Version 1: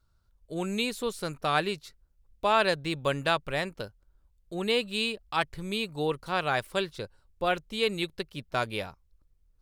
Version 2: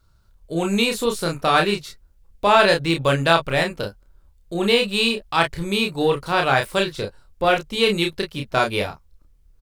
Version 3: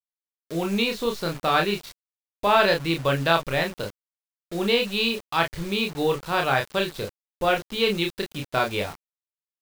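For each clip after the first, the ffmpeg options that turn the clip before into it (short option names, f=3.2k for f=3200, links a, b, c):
-filter_complex "[0:a]asplit=2[a][b];[b]asoftclip=type=tanh:threshold=-28dB,volume=-9dB[c];[a][c]amix=inputs=2:normalize=0,aecho=1:1:30|44:0.668|0.237,volume=6.5dB"
-af "lowpass=f=5.7k:w=0.5412,lowpass=f=5.7k:w=1.3066,acrusher=bits=5:mix=0:aa=0.000001,volume=-4dB"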